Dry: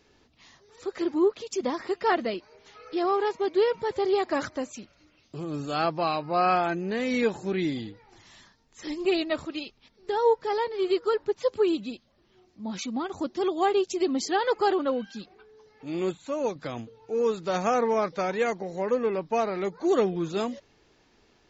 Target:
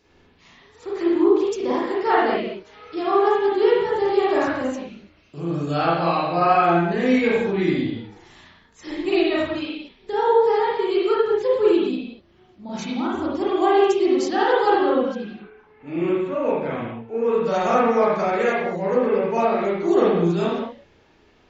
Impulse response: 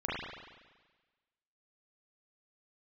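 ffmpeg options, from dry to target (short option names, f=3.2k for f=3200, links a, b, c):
-filter_complex "[0:a]asettb=1/sr,asplit=3[a][b][c];[a]atrim=end=15.154[d];[b]atrim=start=15.15:end=17.43,asetpts=PTS-STARTPTS,afade=t=in:d=0.004:c=qsin,afade=t=out:st=2.276:d=0.004:c=qsin,highshelf=f=3.4k:t=q:w=1.5:g=-11[e];[c]atrim=start=17.426[f];[d][e]acrossfade=d=0.004:c1=hsin:c2=qsin[g];[g][f]acrossfade=d=0.004:c1=qsin:c2=hsin[h];[1:a]atrim=start_sample=2205,afade=t=out:st=0.3:d=0.01,atrim=end_sample=13671[i];[h][i]afir=irnorm=-1:irlink=0"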